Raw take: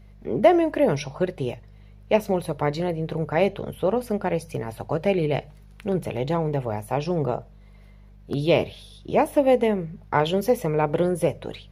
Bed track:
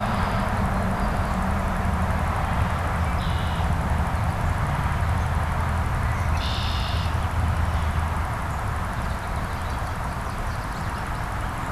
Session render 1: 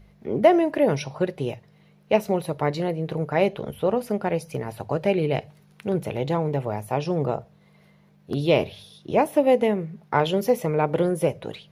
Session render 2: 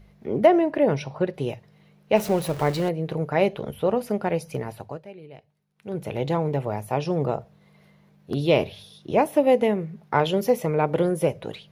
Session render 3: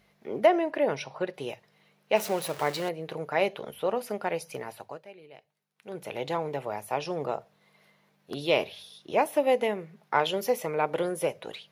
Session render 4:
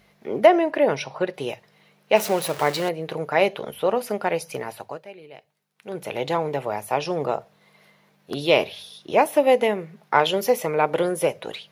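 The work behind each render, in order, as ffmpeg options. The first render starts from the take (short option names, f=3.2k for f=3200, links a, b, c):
-af "bandreject=f=50:t=h:w=4,bandreject=f=100:t=h:w=4"
-filter_complex "[0:a]asettb=1/sr,asplit=3[a][b][c];[a]atrim=end=0.464[d];[b]atrim=start=0.46:end=1.34,asetpts=PTS-STARTPTS,afade=t=in:d=0.004:c=qsin,afade=t=out:st=0.876:d=0.004:c=qsin,lowpass=f=3k:p=1[e];[c]atrim=start=1.336[f];[d][e]acrossfade=d=0.004:c1=hsin:c2=qsin[g];[g][f]acrossfade=d=0.004:c1=qsin:c2=hsin,asettb=1/sr,asplit=3[h][i][j];[h]atrim=end=2.164[k];[i]atrim=start=2.16:end=2.89,asetpts=PTS-STARTPTS,afade=t=in:d=0.004:c=qsin,afade=t=out:st=0.726:d=0.004:c=qsin,aeval=exprs='val(0)+0.5*0.0282*sgn(val(0))':c=same[l];[j]atrim=start=2.886[m];[k][l]acrossfade=d=0.004:c1=hsin:c2=qsin[n];[n][m]acrossfade=d=0.004:c1=qsin:c2=hsin,asplit=3[o][p][q];[o]atrim=end=5.05,asetpts=PTS-STARTPTS,afade=t=out:st=4.62:d=0.43:silence=0.0944061[r];[p]atrim=start=5.05:end=5.75,asetpts=PTS-STARTPTS,volume=-20.5dB[s];[q]atrim=start=5.75,asetpts=PTS-STARTPTS,afade=t=in:d=0.43:silence=0.0944061[t];[r][s][t]concat=n=3:v=0:a=1"
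-af "highpass=f=800:p=1"
-af "volume=6.5dB"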